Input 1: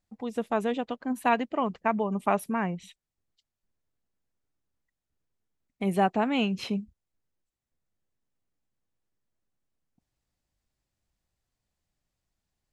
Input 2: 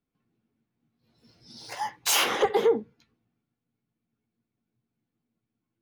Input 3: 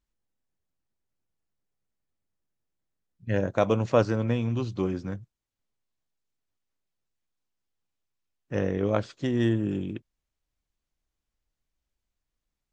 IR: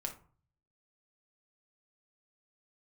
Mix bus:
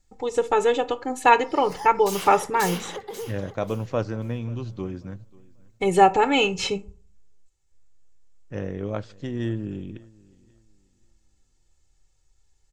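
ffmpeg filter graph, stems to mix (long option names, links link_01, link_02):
-filter_complex "[0:a]lowpass=frequency=7200:width_type=q:width=3.2,aecho=1:1:2.3:0.91,volume=2dB,asplit=3[link_01][link_02][link_03];[link_02]volume=-4dB[link_04];[1:a]bass=frequency=250:gain=3,treble=frequency=4000:gain=2,acompressor=threshold=-28dB:ratio=3,highshelf=frequency=6900:gain=5.5,volume=-2.5dB,asplit=2[link_05][link_06];[link_06]volume=-4dB[link_07];[2:a]volume=-6dB,asplit=3[link_08][link_09][link_10];[link_09]volume=-15.5dB[link_11];[link_10]volume=-22.5dB[link_12];[link_03]apad=whole_len=256399[link_13];[link_05][link_13]sidechaincompress=threshold=-25dB:ratio=8:attack=16:release=440[link_14];[3:a]atrim=start_sample=2205[link_15];[link_04][link_11]amix=inputs=2:normalize=0[link_16];[link_16][link_15]afir=irnorm=-1:irlink=0[link_17];[link_07][link_12]amix=inputs=2:normalize=0,aecho=0:1:538|1076|1614|2152:1|0.27|0.0729|0.0197[link_18];[link_01][link_14][link_08][link_17][link_18]amix=inputs=5:normalize=0,lowshelf=frequency=70:gain=11.5"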